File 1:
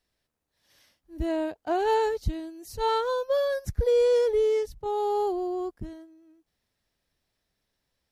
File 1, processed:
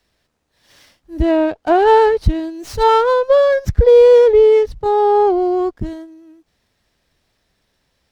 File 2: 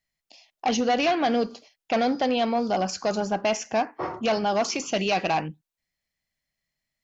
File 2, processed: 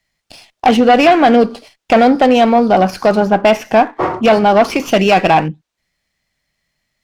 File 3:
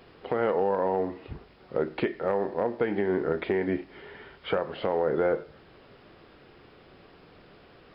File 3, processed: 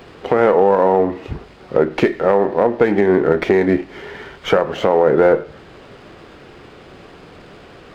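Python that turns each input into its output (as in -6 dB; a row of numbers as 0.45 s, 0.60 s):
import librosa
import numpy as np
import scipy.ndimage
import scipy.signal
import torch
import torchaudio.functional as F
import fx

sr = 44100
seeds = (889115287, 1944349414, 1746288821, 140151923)

y = fx.env_lowpass_down(x, sr, base_hz=2900.0, full_db=-24.0)
y = fx.running_max(y, sr, window=3)
y = librosa.util.normalize(y) * 10.0 ** (-1.5 / 20.0)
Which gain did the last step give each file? +13.5 dB, +14.0 dB, +12.5 dB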